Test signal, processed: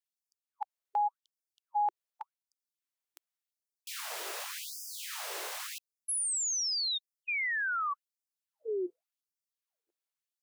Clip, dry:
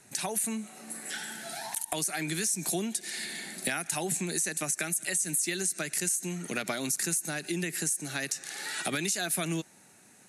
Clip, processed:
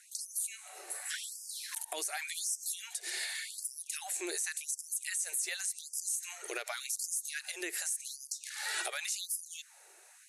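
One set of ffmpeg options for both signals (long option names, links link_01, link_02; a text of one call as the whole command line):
ffmpeg -i in.wav -af "alimiter=level_in=0.5dB:limit=-24dB:level=0:latency=1:release=136,volume=-0.5dB,afftfilt=real='re*gte(b*sr/1024,320*pow(4800/320,0.5+0.5*sin(2*PI*0.88*pts/sr)))':imag='im*gte(b*sr/1024,320*pow(4800/320,0.5+0.5*sin(2*PI*0.88*pts/sr)))':win_size=1024:overlap=0.75" out.wav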